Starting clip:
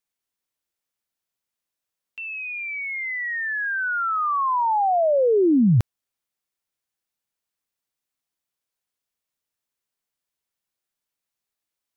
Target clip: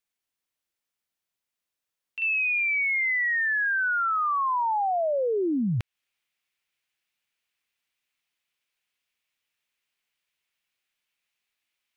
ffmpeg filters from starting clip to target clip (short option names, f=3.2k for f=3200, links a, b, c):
-af "asetnsamples=n=441:p=0,asendcmd='2.22 equalizer g 14.5',equalizer=f=2.5k:w=0.95:g=3.5,alimiter=limit=-20dB:level=0:latency=1:release=178,volume=-2dB"